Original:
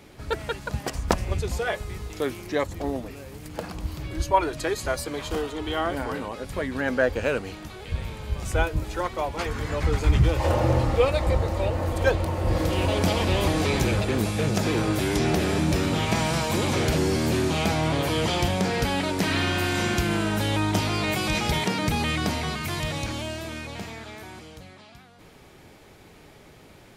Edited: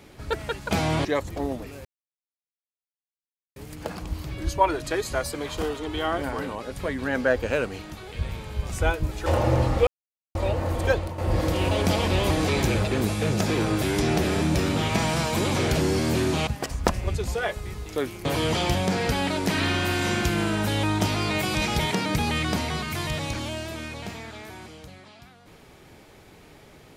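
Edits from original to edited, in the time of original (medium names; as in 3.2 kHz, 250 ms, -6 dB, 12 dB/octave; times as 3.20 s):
0.71–2.49 s: swap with 17.64–17.98 s
3.29 s: insert silence 1.71 s
8.99–10.43 s: delete
11.04–11.52 s: mute
12.03–12.35 s: fade out, to -10 dB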